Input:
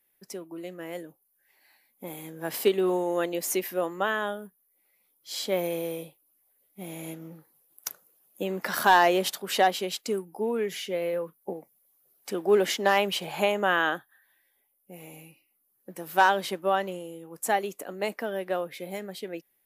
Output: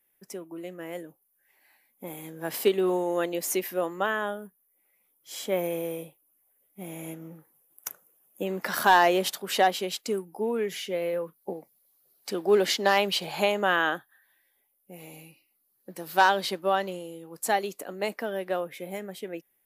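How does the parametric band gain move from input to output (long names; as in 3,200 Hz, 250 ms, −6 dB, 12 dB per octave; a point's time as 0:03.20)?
parametric band 4,400 Hz 0.48 octaves
−7 dB
from 0:02.23 −0.5 dB
from 0:04.06 −12 dB
from 0:08.47 0 dB
from 0:11.36 +8 dB
from 0:13.76 +0.5 dB
from 0:14.99 +8 dB
from 0:17.80 +2 dB
from 0:18.60 −7.5 dB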